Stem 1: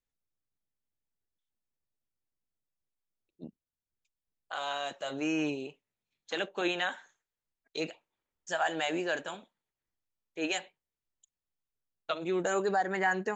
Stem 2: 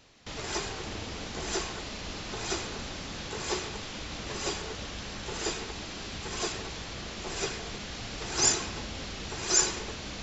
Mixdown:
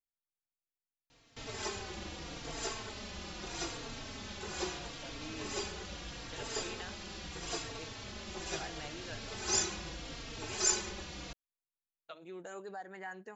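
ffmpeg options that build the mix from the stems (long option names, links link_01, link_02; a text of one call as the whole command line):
ffmpeg -i stem1.wav -i stem2.wav -filter_complex "[0:a]volume=-16dB[link_01];[1:a]asplit=2[link_02][link_03];[link_03]adelay=3.8,afreqshift=-0.78[link_04];[link_02][link_04]amix=inputs=2:normalize=1,adelay=1100,volume=-3dB[link_05];[link_01][link_05]amix=inputs=2:normalize=0" out.wav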